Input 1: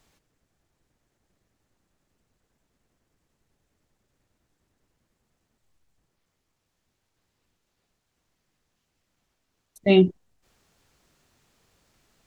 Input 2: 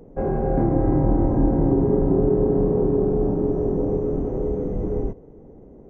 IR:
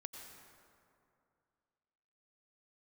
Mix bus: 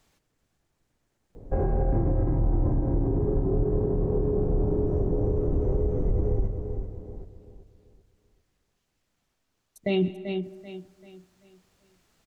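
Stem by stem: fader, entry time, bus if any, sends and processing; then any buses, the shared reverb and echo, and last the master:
−2.5 dB, 0.00 s, send −10.5 dB, echo send −12.5 dB, no processing
−2.0 dB, 1.35 s, no send, echo send −9.5 dB, downward compressor, threshold −20 dBFS, peak gain reduction 7.5 dB; low shelf with overshoot 130 Hz +8 dB, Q 1.5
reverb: on, RT60 2.5 s, pre-delay 83 ms
echo: repeating echo 387 ms, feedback 36%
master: brickwall limiter −16 dBFS, peak gain reduction 8.5 dB

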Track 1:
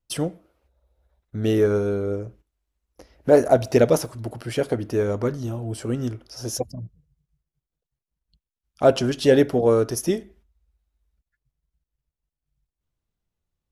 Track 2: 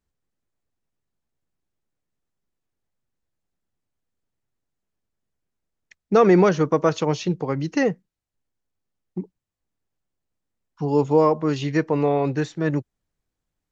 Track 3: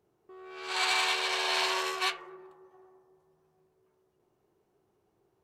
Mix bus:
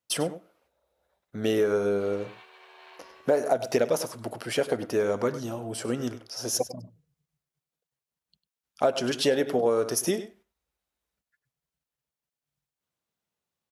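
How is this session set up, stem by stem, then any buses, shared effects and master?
+2.5 dB, 0.00 s, no send, echo send −15 dB, parametric band 320 Hz −5.5 dB 0.81 octaves
muted
−19.0 dB, 1.30 s, no send, no echo send, treble cut that deepens with the level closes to 2,500 Hz, closed at −27 dBFS; dead-zone distortion −50.5 dBFS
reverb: not used
echo: single-tap delay 99 ms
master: high-pass filter 240 Hz 12 dB per octave; downward compressor 6 to 1, threshold −20 dBFS, peak gain reduction 11 dB

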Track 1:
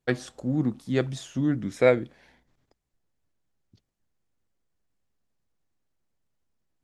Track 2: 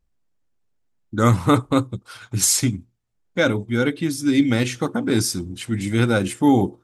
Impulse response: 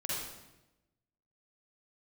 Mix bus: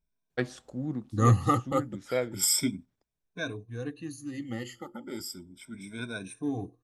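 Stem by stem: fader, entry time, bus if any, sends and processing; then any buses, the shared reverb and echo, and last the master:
−3.0 dB, 0.30 s, no send, automatic ducking −7 dB, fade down 0.85 s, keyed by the second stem
0:02.79 −13 dB → 0:03.57 −21.5 dB, 0.00 s, no send, rippled gain that drifts along the octave scale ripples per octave 1.6, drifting +0.34 Hz, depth 23 dB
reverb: not used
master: no processing

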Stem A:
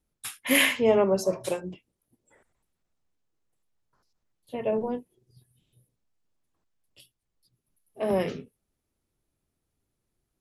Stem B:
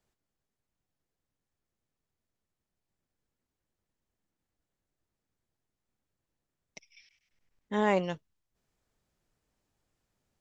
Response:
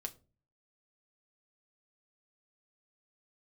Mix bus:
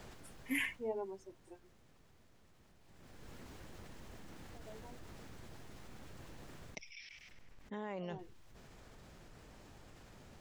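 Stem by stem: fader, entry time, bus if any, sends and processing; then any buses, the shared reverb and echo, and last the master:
−2.0 dB, 0.00 s, no send, spectral dynamics exaggerated over time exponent 2; phaser with its sweep stopped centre 830 Hz, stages 8; automatic ducking −14 dB, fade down 1.15 s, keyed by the second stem
0:00.65 −5.5 dB → 0:00.89 −16 dB → 0:02.78 −16 dB → 0:03.28 −3 dB → 0:06.66 −3 dB → 0:06.87 −10 dB, 0.00 s, no send, brickwall limiter −23 dBFS, peak gain reduction 9.5 dB; envelope flattener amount 70%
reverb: not used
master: high-shelf EQ 6,200 Hz −11.5 dB

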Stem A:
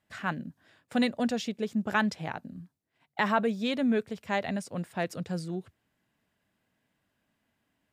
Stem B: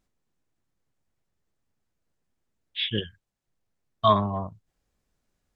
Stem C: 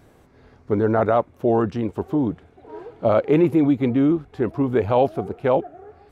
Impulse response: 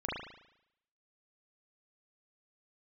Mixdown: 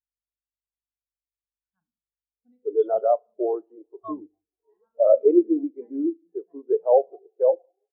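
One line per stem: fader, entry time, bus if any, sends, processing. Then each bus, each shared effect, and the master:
−12.0 dB, 1.50 s, send −8 dB, no echo send, low-shelf EQ 150 Hz −6 dB; automatic ducking −24 dB, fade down 0.25 s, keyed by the second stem
−7.0 dB, 0.00 s, no send, no echo send, reverb reduction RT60 1.2 s; mains hum 50 Hz, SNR 14 dB
−1.0 dB, 1.95 s, send −16 dB, echo send −21.5 dB, high-pass filter 350 Hz 24 dB per octave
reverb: on, RT60 0.80 s, pre-delay 36 ms
echo: repeating echo 183 ms, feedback 57%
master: every bin expanded away from the loudest bin 2.5 to 1

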